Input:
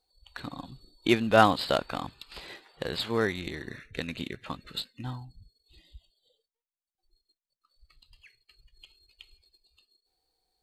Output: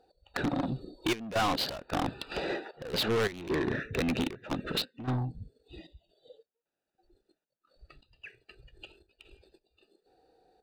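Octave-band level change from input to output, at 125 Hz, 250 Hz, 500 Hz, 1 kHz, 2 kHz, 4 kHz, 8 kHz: +1.5 dB, -0.5 dB, -3.5 dB, -5.5 dB, -3.0 dB, 0.0 dB, +2.5 dB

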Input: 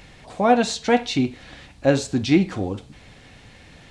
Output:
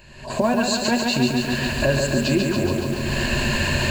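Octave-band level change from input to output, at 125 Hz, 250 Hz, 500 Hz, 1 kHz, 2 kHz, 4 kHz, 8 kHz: +5.0 dB, +0.5 dB, 0.0 dB, -3.0 dB, +7.0 dB, +6.5 dB, +6.0 dB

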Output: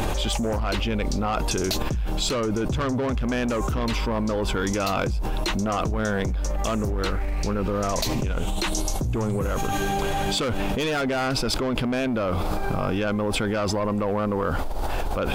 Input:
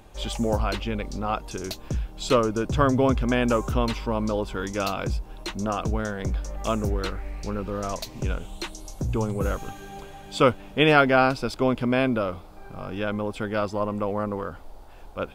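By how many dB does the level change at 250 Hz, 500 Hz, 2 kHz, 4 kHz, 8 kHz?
+1.0 dB, -1.0 dB, -0.5 dB, +4.5 dB, +8.0 dB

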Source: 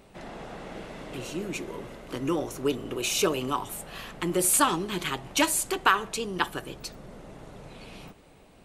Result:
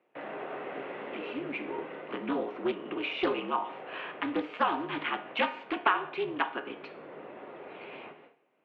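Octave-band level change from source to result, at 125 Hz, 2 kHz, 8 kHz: -13.5 dB, -2.5 dB, under -40 dB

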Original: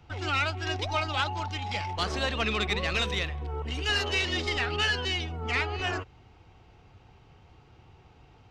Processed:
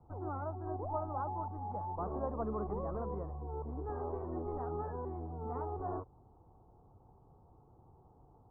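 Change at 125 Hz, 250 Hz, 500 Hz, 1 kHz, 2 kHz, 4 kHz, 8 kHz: -8.0 dB, -5.0 dB, -4.5 dB, -6.5 dB, -33.5 dB, under -40 dB, under -35 dB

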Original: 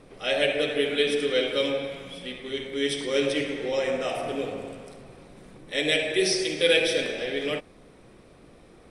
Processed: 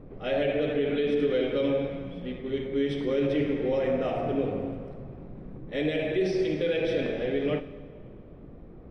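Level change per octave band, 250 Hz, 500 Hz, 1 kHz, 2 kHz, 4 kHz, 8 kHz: +3.0 dB, -0.5 dB, -1.5 dB, -9.0 dB, -13.5 dB, under -20 dB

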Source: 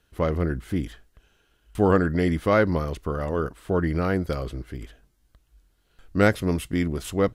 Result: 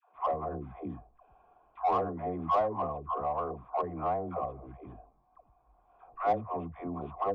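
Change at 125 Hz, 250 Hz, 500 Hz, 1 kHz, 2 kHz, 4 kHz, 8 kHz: -17.0 dB, -15.5 dB, -9.5 dB, +1.0 dB, -20.5 dB, under -15 dB, no reading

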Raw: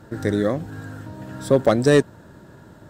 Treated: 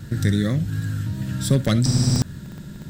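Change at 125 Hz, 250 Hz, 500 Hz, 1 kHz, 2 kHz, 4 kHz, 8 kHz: +8.0 dB, +0.5 dB, -12.0 dB, -8.0 dB, -4.5 dB, +5.5 dB, +8.0 dB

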